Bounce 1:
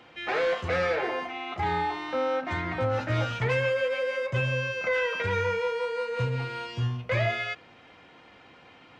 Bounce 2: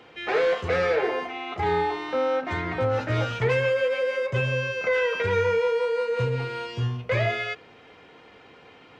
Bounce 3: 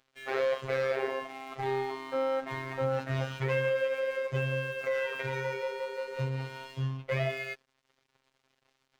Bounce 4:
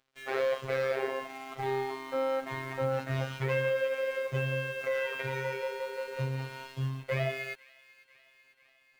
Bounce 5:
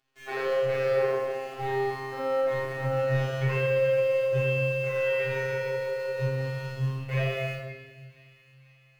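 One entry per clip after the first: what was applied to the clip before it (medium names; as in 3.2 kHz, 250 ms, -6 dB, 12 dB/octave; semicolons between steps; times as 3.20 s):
peaking EQ 430 Hz +9.5 dB 0.28 oct; trim +1.5 dB
crossover distortion -45.5 dBFS; robot voice 133 Hz; trim -4.5 dB
in parallel at -4.5 dB: word length cut 8-bit, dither none; on the sum: feedback echo behind a high-pass 495 ms, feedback 66%, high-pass 1.9 kHz, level -18 dB; trim -4.5 dB
simulated room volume 1000 m³, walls mixed, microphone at 3.4 m; trim -4.5 dB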